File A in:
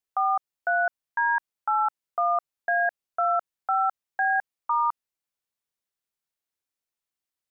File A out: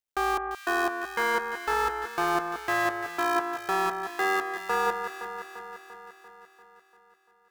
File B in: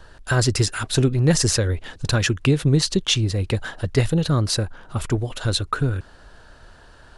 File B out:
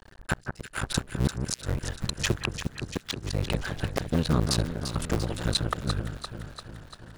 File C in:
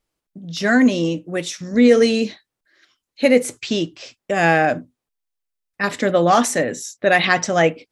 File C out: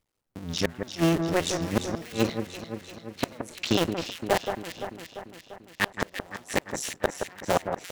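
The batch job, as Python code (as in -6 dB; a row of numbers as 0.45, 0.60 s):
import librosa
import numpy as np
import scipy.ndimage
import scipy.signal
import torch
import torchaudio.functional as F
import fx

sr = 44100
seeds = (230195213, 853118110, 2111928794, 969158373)

y = fx.cycle_switch(x, sr, every=2, mode='muted')
y = fx.gate_flip(y, sr, shuts_db=-9.0, range_db=-33)
y = fx.echo_alternate(y, sr, ms=172, hz=1800.0, feedback_pct=77, wet_db=-6.5)
y = y * 10.0 ** (-30 / 20.0) / np.sqrt(np.mean(np.square(y)))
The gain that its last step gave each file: 0.0, -2.5, +0.5 dB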